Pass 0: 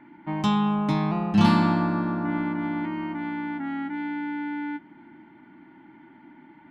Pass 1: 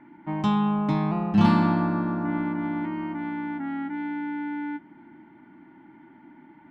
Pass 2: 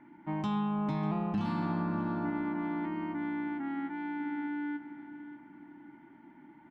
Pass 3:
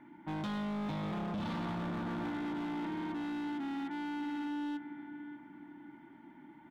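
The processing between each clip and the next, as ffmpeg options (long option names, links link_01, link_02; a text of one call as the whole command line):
ffmpeg -i in.wav -af "highshelf=frequency=3200:gain=-9.5" out.wav
ffmpeg -i in.wav -filter_complex "[0:a]alimiter=limit=-19dB:level=0:latency=1:release=215,asplit=2[link_01][link_02];[link_02]adelay=595,lowpass=frequency=3400:poles=1,volume=-12dB,asplit=2[link_03][link_04];[link_04]adelay=595,lowpass=frequency=3400:poles=1,volume=0.39,asplit=2[link_05][link_06];[link_06]adelay=595,lowpass=frequency=3400:poles=1,volume=0.39,asplit=2[link_07][link_08];[link_08]adelay=595,lowpass=frequency=3400:poles=1,volume=0.39[link_09];[link_01][link_03][link_05][link_07][link_09]amix=inputs=5:normalize=0,volume=-5dB" out.wav
ffmpeg -i in.wav -af "volume=35dB,asoftclip=hard,volume=-35dB,equalizer=frequency=3500:width_type=o:width=0.32:gain=7.5" out.wav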